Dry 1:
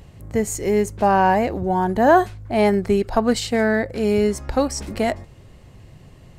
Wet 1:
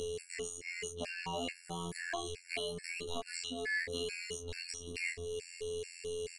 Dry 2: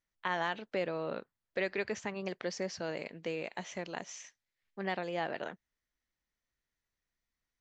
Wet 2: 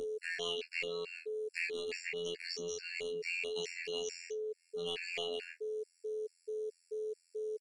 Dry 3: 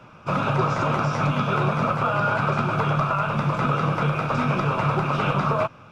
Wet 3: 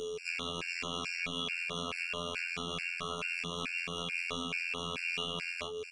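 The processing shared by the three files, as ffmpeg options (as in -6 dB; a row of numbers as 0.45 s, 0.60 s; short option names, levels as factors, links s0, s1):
-filter_complex "[0:a]aeval=exprs='val(0)+0.0355*sin(2*PI*450*n/s)':c=same,aexciter=amount=10.6:drive=4.2:freq=2200,acompressor=threshold=0.0794:ratio=10,asoftclip=type=tanh:threshold=0.0944,afftfilt=real='hypot(re,im)*cos(PI*b)':imag='0':win_size=2048:overlap=0.75,aresample=22050,aresample=44100,equalizer=f=125:t=o:w=1:g=-10,equalizer=f=250:t=o:w=1:g=7,equalizer=f=500:t=o:w=1:g=-6,equalizer=f=1000:t=o:w=1:g=-9,equalizer=f=2000:t=o:w=1:g=-3,equalizer=f=4000:t=o:w=1:g=-5,aecho=1:1:25|39:0.631|0.316,acrossover=split=700|2900[s0][s1][s2];[s0]acompressor=threshold=0.00891:ratio=4[s3];[s2]acompressor=threshold=0.00158:ratio=4[s4];[s3][s1][s4]amix=inputs=3:normalize=0,highshelf=f=2500:g=8,afftfilt=real='re*gt(sin(2*PI*2.3*pts/sr)*(1-2*mod(floor(b*sr/1024/1400),2)),0)':imag='im*gt(sin(2*PI*2.3*pts/sr)*(1-2*mod(floor(b*sr/1024/1400),2)),0)':win_size=1024:overlap=0.75,volume=1.26"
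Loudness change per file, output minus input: -20.0 LU, -2.0 LU, -12.5 LU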